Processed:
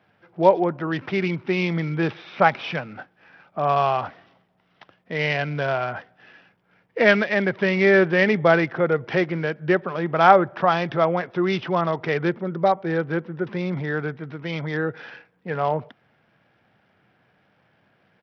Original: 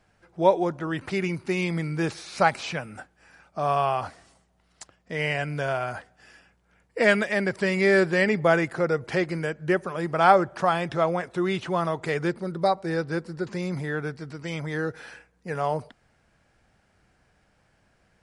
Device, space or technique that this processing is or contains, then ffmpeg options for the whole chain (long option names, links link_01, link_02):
Bluetooth headset: -af "highpass=frequency=110:width=0.5412,highpass=frequency=110:width=1.3066,aresample=8000,aresample=44100,volume=3.5dB" -ar 44100 -c:a sbc -b:a 64k